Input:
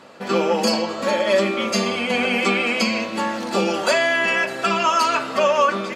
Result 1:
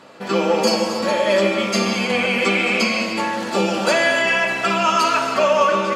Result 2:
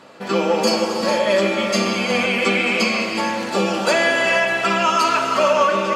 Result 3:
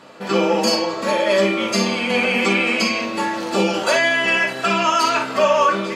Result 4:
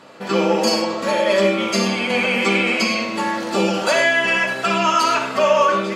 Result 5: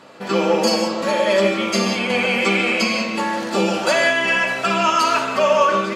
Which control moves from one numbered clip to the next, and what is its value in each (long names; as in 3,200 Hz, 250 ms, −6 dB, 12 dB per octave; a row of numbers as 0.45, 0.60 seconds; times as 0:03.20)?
reverb whose tail is shaped and stops, gate: 330, 510, 80, 140, 210 milliseconds